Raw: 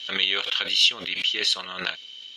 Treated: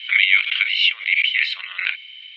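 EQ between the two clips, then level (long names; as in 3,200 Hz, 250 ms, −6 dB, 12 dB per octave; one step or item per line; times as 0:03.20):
high-pass with resonance 2,200 Hz, resonance Q 9.3
high-frequency loss of the air 460 metres
+4.5 dB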